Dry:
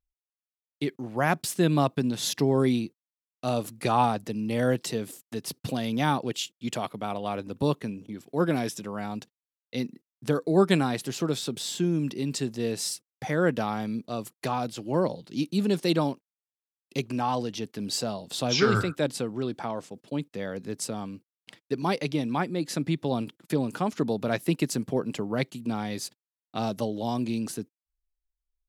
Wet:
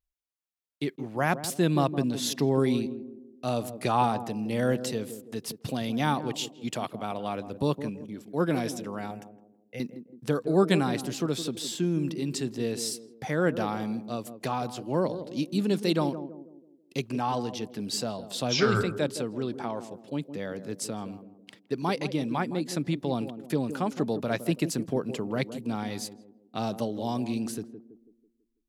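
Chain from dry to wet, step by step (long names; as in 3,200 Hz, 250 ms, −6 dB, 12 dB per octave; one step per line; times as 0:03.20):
0:09.11–0:09.80: phaser with its sweep stopped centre 1,100 Hz, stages 6
on a send: feedback echo with a band-pass in the loop 164 ms, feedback 46%, band-pass 320 Hz, level −9 dB
on the sum: level −1.5 dB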